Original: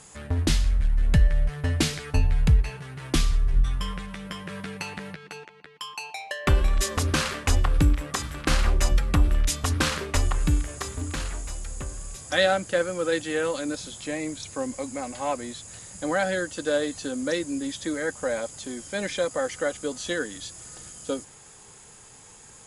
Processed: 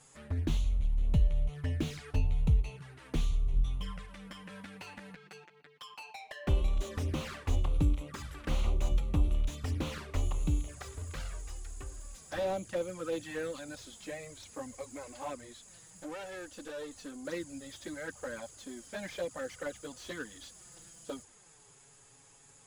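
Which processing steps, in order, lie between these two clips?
15.35–17.25 tube stage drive 28 dB, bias 0.4; envelope flanger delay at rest 8.7 ms, full sweep at -20.5 dBFS; slew limiter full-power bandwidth 56 Hz; gain -7.5 dB

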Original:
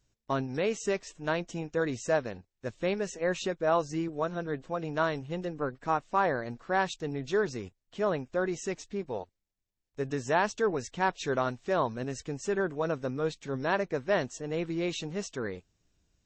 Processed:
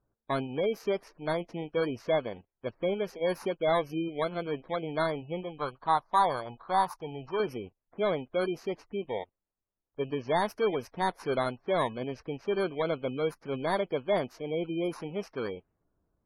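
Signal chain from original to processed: FFT order left unsorted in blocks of 16 samples; overdrive pedal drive 12 dB, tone 1300 Hz, clips at -13.5 dBFS; low-pass opened by the level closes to 1500 Hz, open at -26.5 dBFS; spectral gate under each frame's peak -30 dB strong; 5.43–7.4 graphic EQ 250/500/1000/2000 Hz -7/-5/+10/-8 dB

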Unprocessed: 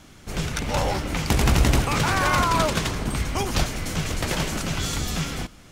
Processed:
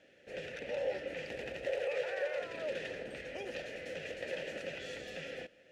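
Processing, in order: 1.66–2.42 resonant low shelf 360 Hz -9.5 dB, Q 3; limiter -18 dBFS, peak gain reduction 11 dB; vowel filter e; gain +1.5 dB

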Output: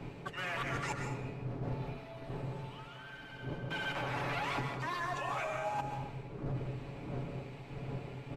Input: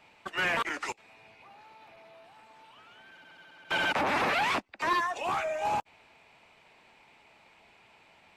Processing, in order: wind noise 380 Hz -40 dBFS; bell 130 Hz +12 dB 0.26 oct; comb 7.1 ms, depth 43%; reverse; compressor 16:1, threshold -36 dBFS, peak gain reduction 17.5 dB; reverse; plate-style reverb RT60 0.89 s, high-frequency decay 0.6×, pre-delay 0.115 s, DRR 3.5 dB; gain +1 dB

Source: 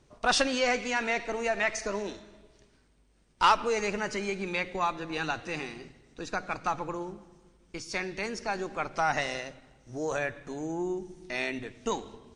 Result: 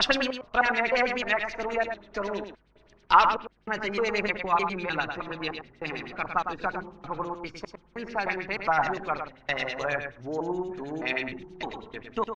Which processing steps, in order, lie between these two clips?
slices in reverse order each 0.306 s, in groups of 2; echo 0.106 s -7 dB; LFO low-pass sine 9.4 Hz 950–4400 Hz

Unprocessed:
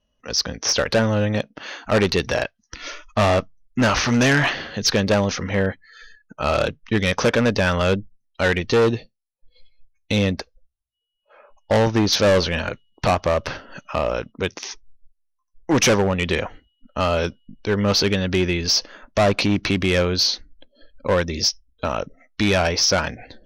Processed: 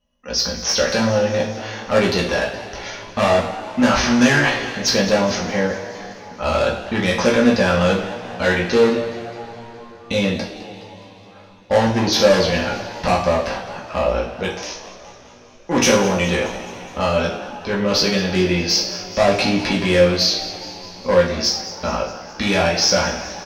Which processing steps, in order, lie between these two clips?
doubler 17 ms -7 dB; frequency-shifting echo 0.209 s, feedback 58%, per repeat +120 Hz, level -16 dB; two-slope reverb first 0.51 s, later 4.7 s, from -21 dB, DRR -2 dB; gain -3 dB

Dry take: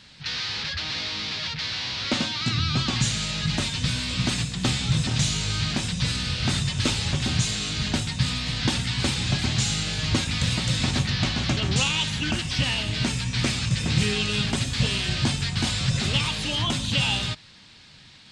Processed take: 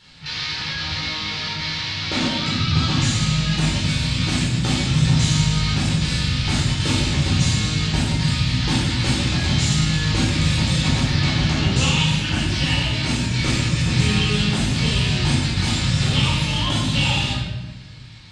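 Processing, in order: shoebox room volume 690 m³, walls mixed, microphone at 4.3 m; gain -5.5 dB

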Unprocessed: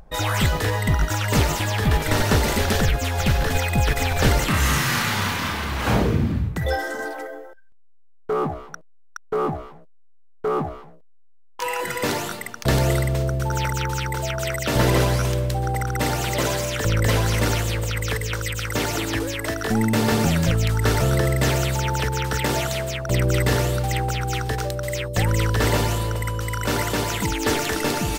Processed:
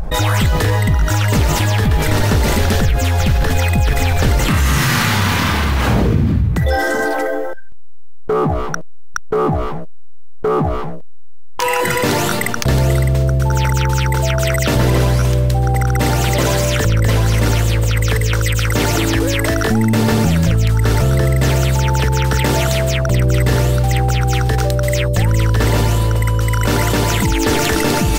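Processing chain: low shelf 220 Hz +6.5 dB; fast leveller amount 70%; gain -2.5 dB

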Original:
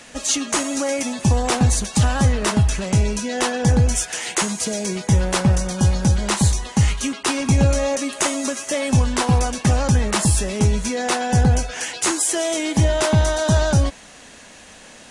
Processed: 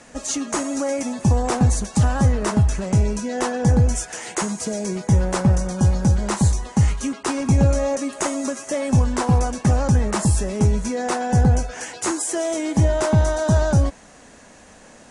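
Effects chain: LPF 8500 Hz 12 dB/oct; bell 3300 Hz -10.5 dB 1.6 oct

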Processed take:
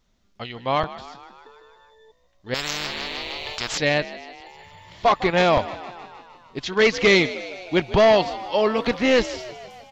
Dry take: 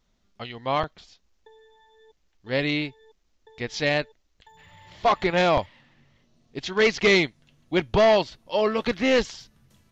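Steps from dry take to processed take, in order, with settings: frequency-shifting echo 0.154 s, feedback 64%, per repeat +58 Hz, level -16 dB; 2.54–3.78 spectral compressor 10:1; gain +2.5 dB

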